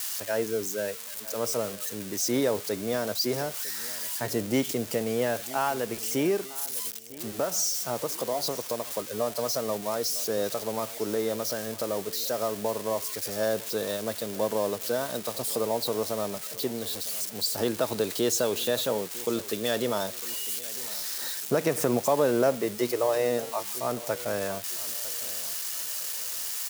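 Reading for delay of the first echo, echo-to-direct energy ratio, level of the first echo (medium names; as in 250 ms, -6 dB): 953 ms, -18.5 dB, -19.0 dB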